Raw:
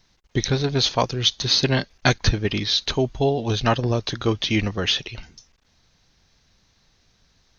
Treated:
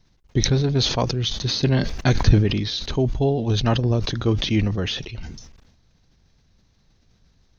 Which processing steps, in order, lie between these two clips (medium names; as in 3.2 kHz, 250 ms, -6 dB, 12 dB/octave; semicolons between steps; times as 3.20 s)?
bass shelf 500 Hz +11 dB; decay stretcher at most 52 dB/s; trim -7.5 dB